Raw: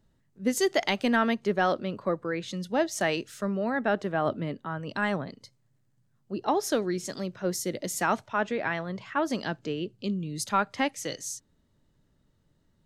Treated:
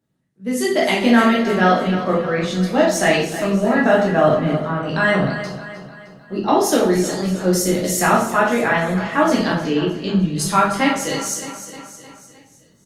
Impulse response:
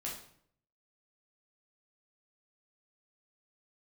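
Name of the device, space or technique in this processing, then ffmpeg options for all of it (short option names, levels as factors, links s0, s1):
far-field microphone of a smart speaker: -filter_complex "[0:a]equalizer=f=11000:t=o:w=0.81:g=2.5,aecho=1:1:308|616|924|1232|1540:0.237|0.121|0.0617|0.0315|0.016[s0];[1:a]atrim=start_sample=2205[s1];[s0][s1]afir=irnorm=-1:irlink=0,highpass=f=100:w=0.5412,highpass=f=100:w=1.3066,dynaudnorm=f=150:g=9:m=4.47" -ar 48000 -c:a libopus -b:a 32k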